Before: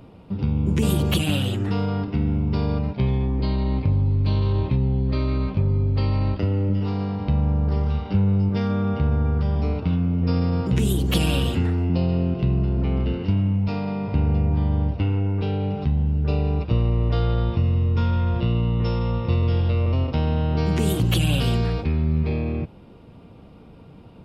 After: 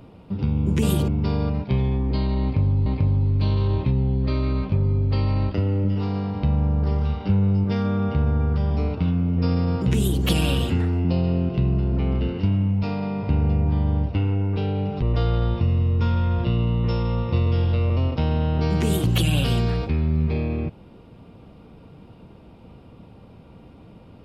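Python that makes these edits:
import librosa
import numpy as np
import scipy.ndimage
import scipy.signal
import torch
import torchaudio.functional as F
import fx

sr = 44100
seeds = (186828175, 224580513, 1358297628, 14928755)

y = fx.edit(x, sr, fx.cut(start_s=1.08, length_s=1.29),
    fx.repeat(start_s=3.71, length_s=0.44, count=2),
    fx.cut(start_s=15.87, length_s=1.11), tone=tone)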